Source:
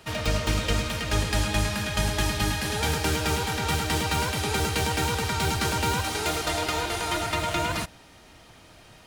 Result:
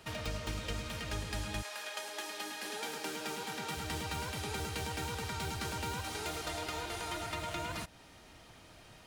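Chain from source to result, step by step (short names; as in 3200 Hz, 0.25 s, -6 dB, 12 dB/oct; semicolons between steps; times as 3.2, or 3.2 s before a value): compressor 2:1, threshold -36 dBFS, peak gain reduction 9.5 dB; 1.61–3.76 HPF 520 Hz -> 140 Hz 24 dB/oct; gain -5 dB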